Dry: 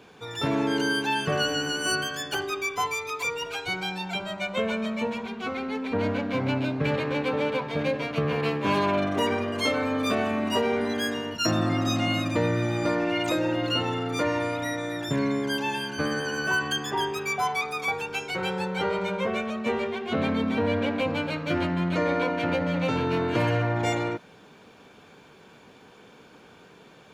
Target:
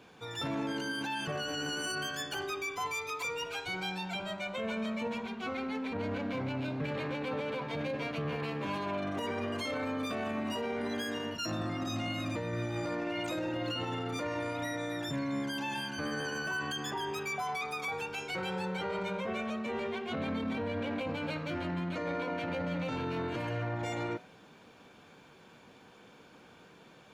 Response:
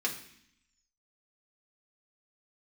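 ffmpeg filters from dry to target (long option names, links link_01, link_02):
-af "bandreject=frequency=420:width=12,alimiter=limit=-23dB:level=0:latency=1:release=15,flanger=delay=7:depth=8.2:regen=-89:speed=0.2:shape=sinusoidal"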